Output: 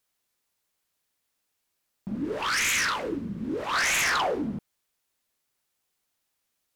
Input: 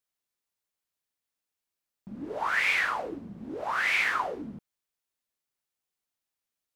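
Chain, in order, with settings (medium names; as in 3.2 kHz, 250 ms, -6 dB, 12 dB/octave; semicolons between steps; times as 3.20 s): sine folder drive 13 dB, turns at -14 dBFS; 2.17–3.74 s: peaking EQ 730 Hz -12.5 dB 0.68 oct; trim -7.5 dB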